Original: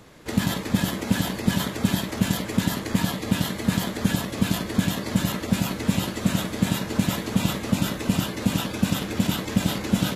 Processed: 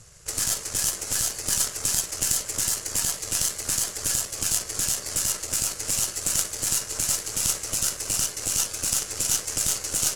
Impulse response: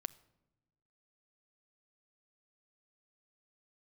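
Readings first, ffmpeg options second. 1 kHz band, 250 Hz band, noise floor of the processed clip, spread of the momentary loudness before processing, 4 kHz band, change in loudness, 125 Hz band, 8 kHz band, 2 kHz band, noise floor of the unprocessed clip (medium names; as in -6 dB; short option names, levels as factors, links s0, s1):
-7.5 dB, -21.0 dB, -39 dBFS, 1 LU, +1.0 dB, +1.0 dB, -15.0 dB, +13.5 dB, -5.5 dB, -34 dBFS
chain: -filter_complex "[0:a]acrossover=split=130[s0][s1];[s0]acompressor=mode=upward:threshold=0.02:ratio=2.5[s2];[s1]highpass=f=290:w=0.5412,highpass=f=290:w=1.3066,equalizer=f=300:t=q:w=4:g=-9,equalizer=f=900:t=q:w=4:g=-4,equalizer=f=1400:t=q:w=4:g=4,equalizer=f=2900:t=q:w=4:g=7,lowpass=f=9200:w=0.5412,lowpass=f=9200:w=1.3066[s3];[s2][s3]amix=inputs=2:normalize=0,aeval=exprs='0.2*(cos(1*acos(clip(val(0)/0.2,-1,1)))-cos(1*PI/2))+0.0891*(cos(2*acos(clip(val(0)/0.2,-1,1)))-cos(2*PI/2))+0.0447*(cos(3*acos(clip(val(0)/0.2,-1,1)))-cos(3*PI/2))+0.01*(cos(5*acos(clip(val(0)/0.2,-1,1)))-cos(5*PI/2))+0.00891*(cos(6*acos(clip(val(0)/0.2,-1,1)))-cos(6*PI/2))':c=same,aexciter=amount=8.7:drive=6.8:freq=5100,volume=0.631"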